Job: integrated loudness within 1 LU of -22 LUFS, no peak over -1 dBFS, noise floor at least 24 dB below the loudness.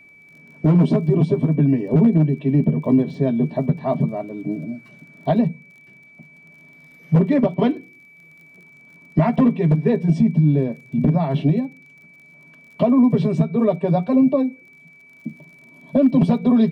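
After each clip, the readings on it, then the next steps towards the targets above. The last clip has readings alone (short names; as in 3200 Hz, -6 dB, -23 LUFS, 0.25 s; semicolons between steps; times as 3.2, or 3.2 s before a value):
ticks 37/s; steady tone 2300 Hz; tone level -46 dBFS; loudness -19.0 LUFS; peak -7.5 dBFS; loudness target -22.0 LUFS
-> de-click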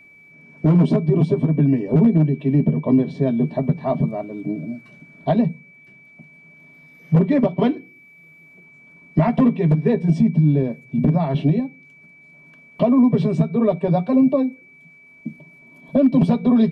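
ticks 0/s; steady tone 2300 Hz; tone level -46 dBFS
-> notch 2300 Hz, Q 30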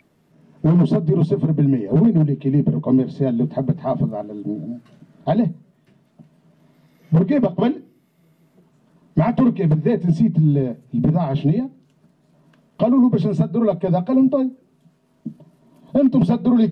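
steady tone none; loudness -19.0 LUFS; peak -7.0 dBFS; loudness target -22.0 LUFS
-> gain -3 dB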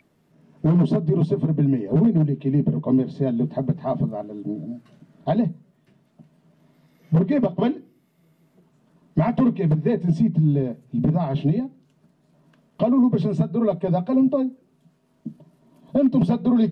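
loudness -22.0 LUFS; peak -10.0 dBFS; noise floor -64 dBFS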